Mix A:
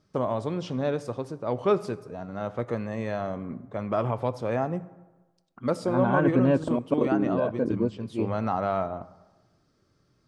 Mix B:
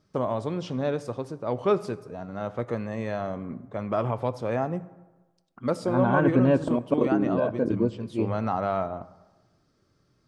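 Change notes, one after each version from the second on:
second voice: send +11.5 dB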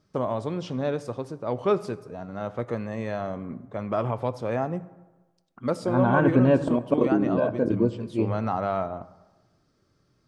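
second voice: send +6.0 dB

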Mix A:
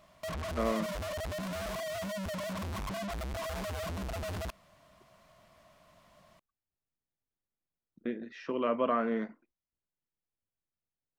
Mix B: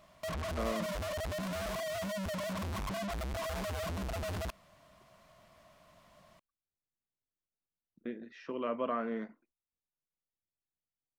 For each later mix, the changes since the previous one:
speech -5.0 dB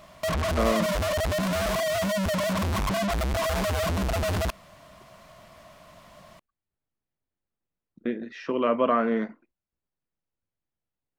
speech +11.5 dB; background +11.0 dB

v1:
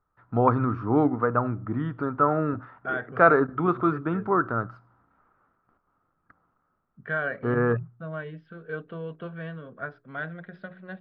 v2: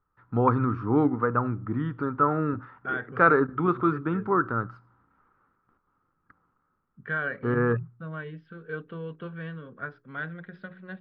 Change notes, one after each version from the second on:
master: add peaking EQ 660 Hz -11 dB 0.35 oct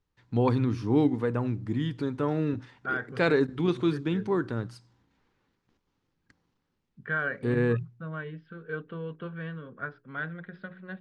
first voice: remove resonant low-pass 1.3 kHz, resonance Q 9.1

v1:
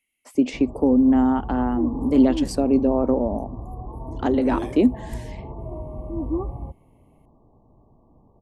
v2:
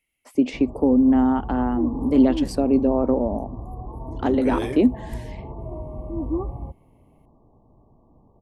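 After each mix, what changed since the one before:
second voice +9.0 dB; master: add peaking EQ 7.3 kHz -5 dB 0.91 oct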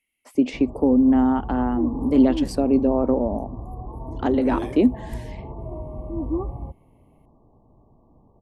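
second voice -7.5 dB

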